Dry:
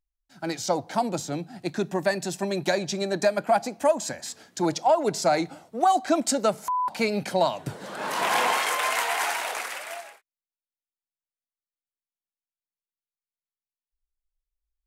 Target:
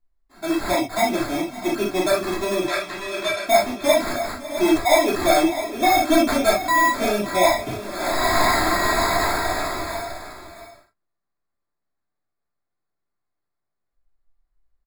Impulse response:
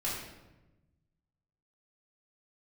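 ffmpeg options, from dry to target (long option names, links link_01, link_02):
-filter_complex "[0:a]aecho=1:1:3.1:0.79,acrusher=samples=15:mix=1:aa=0.000001,asettb=1/sr,asplit=3[link_01][link_02][link_03];[link_01]atrim=end=2.644[link_04];[link_02]atrim=start=2.64:end=3.43,asetpts=PTS-STARTPTS,afade=type=in:duration=0.004:curve=qsin,afade=type=out:start_time=0.786:duration=0.004:curve=qsin,bandpass=frequency=2500:width_type=q:width=0.67:csg=0[link_05];[link_03]atrim=start=3.426[link_06];[link_04][link_05]acrossfade=duration=0.004:curve1=hsin:curve2=qsin[link_07];[link_07][link_06]acrossfade=duration=0.004:curve1=qsin:curve2=hsin,asoftclip=type=tanh:threshold=-12dB,aecho=1:1:553|656:0.133|0.266[link_08];[1:a]atrim=start_sample=2205,atrim=end_sample=3528[link_09];[link_08][link_09]afir=irnorm=-1:irlink=0"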